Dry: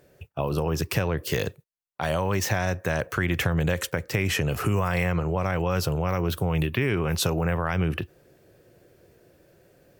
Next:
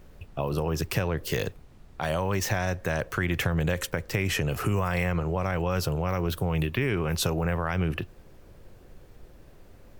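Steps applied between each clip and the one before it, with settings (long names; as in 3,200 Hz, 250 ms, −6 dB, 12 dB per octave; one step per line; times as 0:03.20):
background noise brown −46 dBFS
level −2 dB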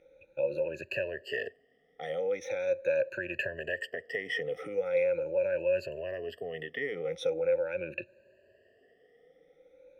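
rippled gain that drifts along the octave scale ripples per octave 1.4, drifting +0.41 Hz, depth 24 dB
formant filter e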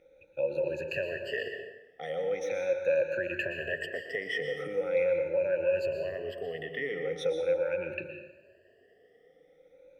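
dense smooth reverb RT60 1 s, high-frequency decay 0.75×, pre-delay 105 ms, DRR 5 dB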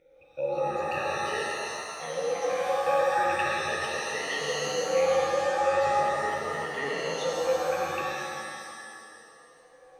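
reverb with rising layers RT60 2 s, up +7 semitones, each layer −2 dB, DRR 0 dB
level −1.5 dB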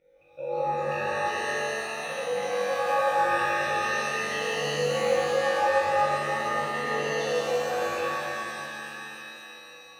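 flutter between parallel walls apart 3.5 metres, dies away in 0.64 s
reverb with rising layers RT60 2.9 s, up +7 semitones, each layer −8 dB, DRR 1 dB
level −6 dB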